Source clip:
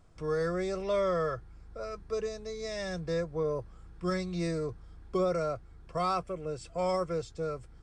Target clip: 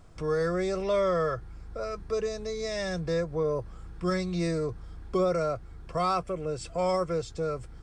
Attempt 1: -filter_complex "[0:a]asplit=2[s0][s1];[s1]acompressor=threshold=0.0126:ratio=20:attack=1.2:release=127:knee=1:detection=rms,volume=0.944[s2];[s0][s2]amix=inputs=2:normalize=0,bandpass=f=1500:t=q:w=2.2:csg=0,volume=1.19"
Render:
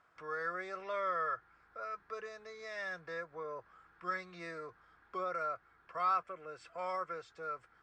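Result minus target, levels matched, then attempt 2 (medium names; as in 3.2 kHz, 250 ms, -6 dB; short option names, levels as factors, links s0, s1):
2 kHz band +8.0 dB
-filter_complex "[0:a]asplit=2[s0][s1];[s1]acompressor=threshold=0.0126:ratio=20:attack=1.2:release=127:knee=1:detection=rms,volume=0.944[s2];[s0][s2]amix=inputs=2:normalize=0,volume=1.19"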